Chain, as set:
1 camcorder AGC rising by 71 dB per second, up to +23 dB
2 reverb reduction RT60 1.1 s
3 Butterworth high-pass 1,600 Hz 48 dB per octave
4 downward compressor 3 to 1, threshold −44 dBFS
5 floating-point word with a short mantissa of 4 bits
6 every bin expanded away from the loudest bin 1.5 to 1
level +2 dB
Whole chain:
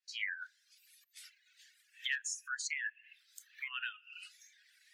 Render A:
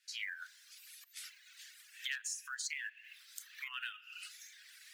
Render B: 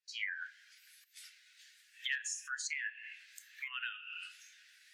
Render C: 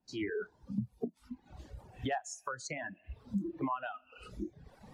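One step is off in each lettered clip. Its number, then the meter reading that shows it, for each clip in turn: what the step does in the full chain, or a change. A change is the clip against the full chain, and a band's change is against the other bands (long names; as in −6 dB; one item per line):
6, 2 kHz band −3.0 dB
2, change in momentary loudness spread +3 LU
3, 1 kHz band +19.0 dB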